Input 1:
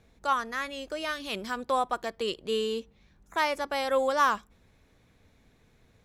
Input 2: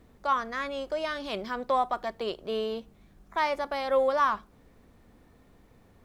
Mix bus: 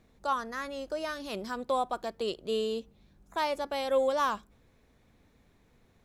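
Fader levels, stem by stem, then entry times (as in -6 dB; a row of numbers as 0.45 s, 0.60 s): -4.5 dB, -9.5 dB; 0.00 s, 0.00 s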